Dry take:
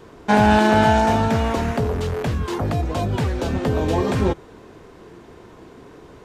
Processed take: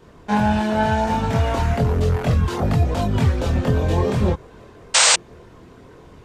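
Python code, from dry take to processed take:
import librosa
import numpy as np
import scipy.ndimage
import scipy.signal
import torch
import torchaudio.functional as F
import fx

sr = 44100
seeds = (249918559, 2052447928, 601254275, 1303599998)

y = fx.chorus_voices(x, sr, voices=6, hz=0.9, base_ms=24, depth_ms=1.1, mix_pct=50)
y = fx.spec_paint(y, sr, seeds[0], shape='noise', start_s=4.94, length_s=0.22, low_hz=460.0, high_hz=8900.0, level_db=-15.0)
y = fx.rider(y, sr, range_db=10, speed_s=0.5)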